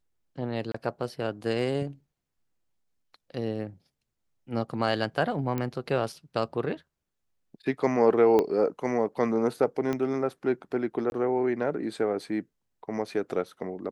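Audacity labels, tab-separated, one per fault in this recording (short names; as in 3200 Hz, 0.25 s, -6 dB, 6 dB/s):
0.720000	0.740000	gap 24 ms
5.580000	5.580000	pop -17 dBFS
8.390000	8.390000	pop -13 dBFS
9.930000	9.930000	pop -17 dBFS
11.100000	11.120000	gap 21 ms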